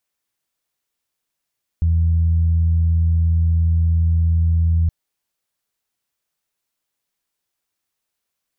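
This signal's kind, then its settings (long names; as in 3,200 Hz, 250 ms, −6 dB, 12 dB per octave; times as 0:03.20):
steady harmonic partials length 3.07 s, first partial 82.9 Hz, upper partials −15.5 dB, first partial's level −13 dB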